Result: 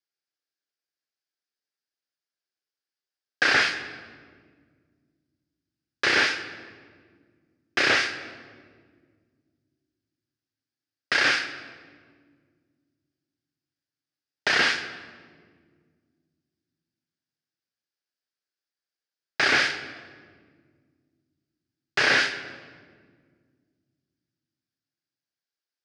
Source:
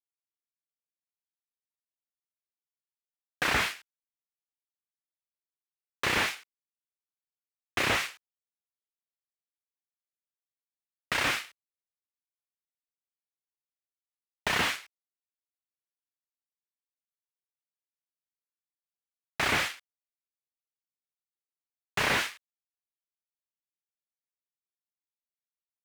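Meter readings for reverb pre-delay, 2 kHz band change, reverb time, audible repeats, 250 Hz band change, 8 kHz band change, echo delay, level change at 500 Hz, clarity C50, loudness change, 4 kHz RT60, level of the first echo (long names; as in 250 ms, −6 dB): 4 ms, +8.0 dB, 1.8 s, no echo audible, +3.5 dB, +1.5 dB, no echo audible, +5.0 dB, 11.0 dB, +6.0 dB, 1.2 s, no echo audible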